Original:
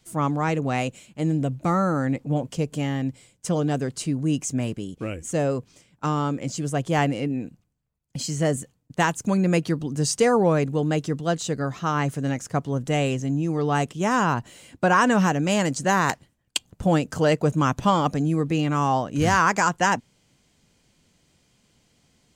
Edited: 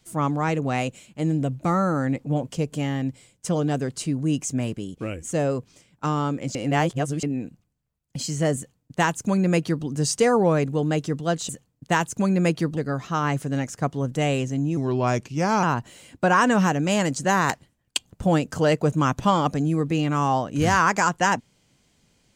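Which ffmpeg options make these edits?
-filter_complex "[0:a]asplit=7[a][b][c][d][e][f][g];[a]atrim=end=6.552[h];[b]atrim=start=6.548:end=7.232,asetpts=PTS-STARTPTS,areverse[i];[c]atrim=start=7.228:end=11.492[j];[d]atrim=start=8.568:end=9.852[k];[e]atrim=start=11.488:end=13.494[l];[f]atrim=start=13.49:end=14.23,asetpts=PTS-STARTPTS,asetrate=37926,aresample=44100[m];[g]atrim=start=14.226[n];[h][i]acrossfade=d=0.004:c1=hsin:c2=hsin[o];[o][j]acrossfade=d=0.004:c1=hsin:c2=hsin[p];[p][k]acrossfade=d=0.004:c1=hsin:c2=hsin[q];[q][l]acrossfade=d=0.004:c1=hsin:c2=hsin[r];[r][m]acrossfade=d=0.004:c1=hsin:c2=hsin[s];[s][n]acrossfade=d=0.004:c1=hsin:c2=hsin"

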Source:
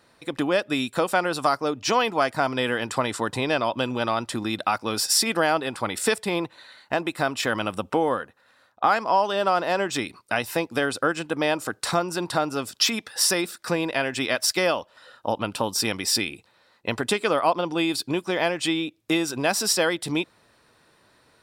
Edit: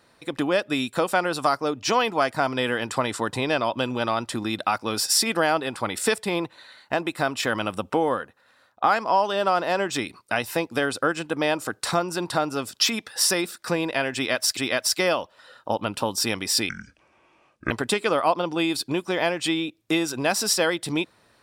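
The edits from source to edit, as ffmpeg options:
-filter_complex "[0:a]asplit=4[a][b][c][d];[a]atrim=end=14.572[e];[b]atrim=start=14.148:end=16.274[f];[c]atrim=start=16.27:end=16.9,asetpts=PTS-STARTPTS,asetrate=27342,aresample=44100,atrim=end_sample=44811,asetpts=PTS-STARTPTS[g];[d]atrim=start=16.896[h];[e][f]acrossfade=d=0.004:c1=hsin:c2=hsin[i];[i][g]acrossfade=d=0.004:c1=hsin:c2=hsin[j];[j][h]acrossfade=d=0.004:c1=hsin:c2=hsin"

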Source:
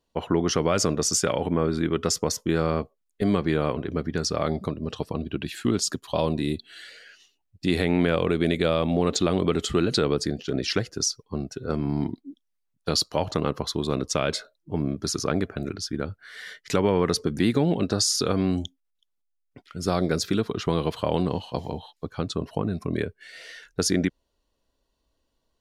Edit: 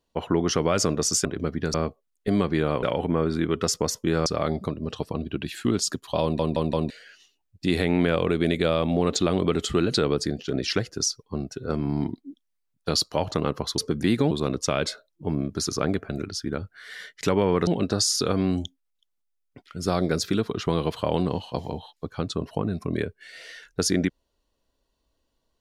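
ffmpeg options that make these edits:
-filter_complex "[0:a]asplit=12[a][b][c][d][e][f][g][h][i][j][k][l];[a]atrim=end=1.252[m];[b]atrim=start=3.768:end=4.262[n];[c]atrim=start=2.678:end=3.772[o];[d]atrim=start=1.248:end=2.682[p];[e]atrim=start=4.258:end=6.392[q];[f]atrim=start=6.218:end=6.392[r];[g]atrim=start=6.218:end=6.392[s];[h]atrim=start=6.218:end=6.392[t];[i]atrim=start=6.898:end=13.782[u];[j]atrim=start=17.138:end=17.672[v];[k]atrim=start=13.778:end=17.142[w];[l]atrim=start=17.668[x];[m][n]acrossfade=d=0.004:c1=hsin:c2=hsin[y];[y][o]acrossfade=d=0.004:c1=hsin:c2=hsin[z];[z][p]acrossfade=d=0.004:c1=hsin:c2=hsin[aa];[aa][q]acrossfade=d=0.004:c1=hsin:c2=hsin[ab];[ab][r]acrossfade=d=0.004:c1=hsin:c2=hsin[ac];[ac][s]acrossfade=d=0.004:c1=hsin:c2=hsin[ad];[ad][t]acrossfade=d=0.004:c1=hsin:c2=hsin[ae];[ae][u]acrossfade=d=0.004:c1=hsin:c2=hsin[af];[af][v]acrossfade=d=0.004:c1=hsin:c2=hsin[ag];[ag][w]acrossfade=d=0.004:c1=hsin:c2=hsin[ah];[ah][x]acrossfade=d=0.004:c1=hsin:c2=hsin"

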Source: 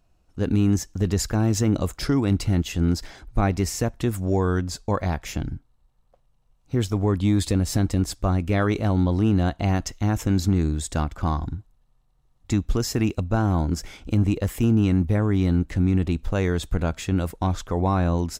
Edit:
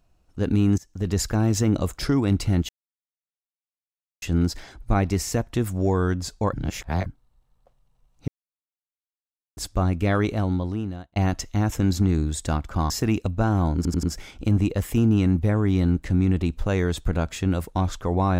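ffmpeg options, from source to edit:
-filter_complex "[0:a]asplit=12[a][b][c][d][e][f][g][h][i][j][k][l];[a]atrim=end=0.78,asetpts=PTS-STARTPTS,afade=t=out:st=0.776:d=0.004:c=hsin:silence=0.0891251[m];[b]atrim=start=0.78:end=2.69,asetpts=PTS-STARTPTS,afade=t=in:d=0.4:silence=0.0891251,afade=t=out:st=1.906:d=0.004:c=hsin,apad=pad_dur=1.53[n];[c]atrim=start=2.69:end=5.002,asetpts=PTS-STARTPTS,afade=t=in:d=0.004:c=hsin[o];[d]atrim=start=4.998:end=5.532,asetpts=PTS-STARTPTS,areverse[p];[e]atrim=start=5.528:end=6.75,asetpts=PTS-STARTPTS,afade=t=out:st=1.218:d=0.004:c=hsin[q];[f]atrim=start=6.75:end=8.04,asetpts=PTS-STARTPTS,volume=0[r];[g]atrim=start=8.04:end=9.63,asetpts=PTS-STARTPTS,afade=t=in:d=0.004:c=hsin,afade=t=out:st=0.64:d=0.95[s];[h]atrim=start=9.63:end=11.372,asetpts=PTS-STARTPTS,afade=t=in:d=0.004:c=hsin[t];[i]atrim=start=12.828:end=13.782[u];[j]atrim=start=13.688:end=13.782[v];[k]atrim=start=13.688:end=13.782[w];[l]atrim=start=13.688[x];[m][n][o]concat=n=3:v=0:a=1[y];[y][p]acrossfade=d=0.004:c1=hsin:c2=hsin[z];[q][r][s][t]concat=n=4:v=0:a=1[aa];[z][aa]acrossfade=d=0.004:c1=hsin:c2=hsin[ab];[ab][u]acrossfade=d=0.004:c1=hsin:c2=hsin[ac];[ac][v]acrossfade=d=0.004:c1=hsin:c2=hsin[ad];[ad][w]acrossfade=d=0.004:c1=hsin:c2=hsin[ae];[ae][x]acrossfade=d=0.004:c1=hsin:c2=hsin"

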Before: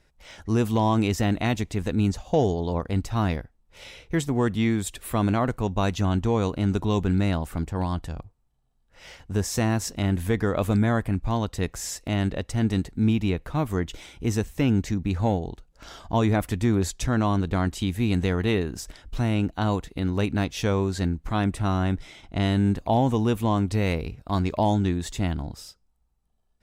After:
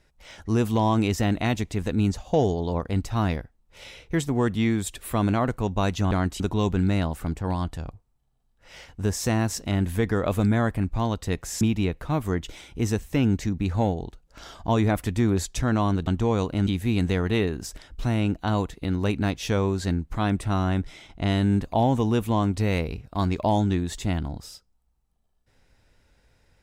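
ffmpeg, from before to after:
-filter_complex "[0:a]asplit=6[a][b][c][d][e][f];[a]atrim=end=6.112[g];[b]atrim=start=17.518:end=17.812[h];[c]atrim=start=6.708:end=11.922[i];[d]atrim=start=13.058:end=17.522[j];[e]atrim=start=6.108:end=6.712[k];[f]atrim=start=17.808[l];[g][h]acrossfade=d=0.004:c1=hsin:c2=hsin[m];[m][i]acrossfade=d=0.004:c1=hsin:c2=hsin[n];[n][j]acrossfade=d=0.004:c1=hsin:c2=hsin[o];[o][k]acrossfade=d=0.004:c1=hsin:c2=hsin[p];[p][l]acrossfade=d=0.004:c1=hsin:c2=hsin"

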